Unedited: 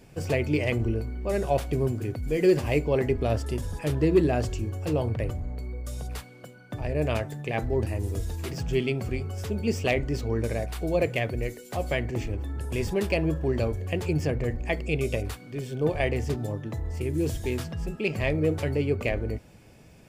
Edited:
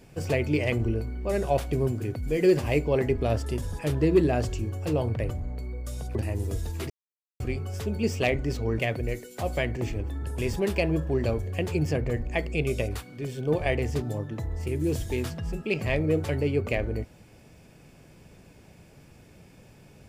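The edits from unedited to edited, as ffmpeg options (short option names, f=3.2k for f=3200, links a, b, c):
-filter_complex "[0:a]asplit=5[a][b][c][d][e];[a]atrim=end=6.152[f];[b]atrim=start=7.788:end=8.54,asetpts=PTS-STARTPTS,afade=t=out:st=0.748:d=0.004:c=hsin[g];[c]atrim=start=8.54:end=9.04,asetpts=PTS-STARTPTS,volume=0[h];[d]atrim=start=9.04:end=10.432,asetpts=PTS-STARTPTS,afade=t=in:d=0.004:c=hsin[i];[e]atrim=start=11.128[j];[g][h][i]concat=n=3:v=0:a=1[k];[f][k]acrossfade=d=0.004:c1=hsin:c2=hsin[l];[l][j]acrossfade=d=0.004:c1=hsin:c2=hsin"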